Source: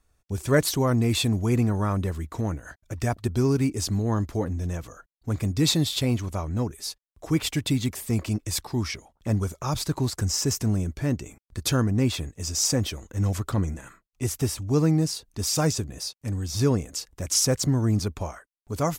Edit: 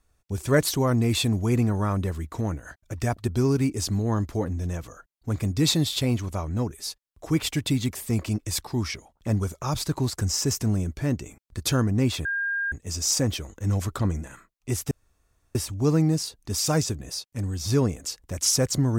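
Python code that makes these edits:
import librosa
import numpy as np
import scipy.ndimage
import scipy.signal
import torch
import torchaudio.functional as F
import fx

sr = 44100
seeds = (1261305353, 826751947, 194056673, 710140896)

y = fx.edit(x, sr, fx.insert_tone(at_s=12.25, length_s=0.47, hz=1610.0, db=-24.0),
    fx.insert_room_tone(at_s=14.44, length_s=0.64), tone=tone)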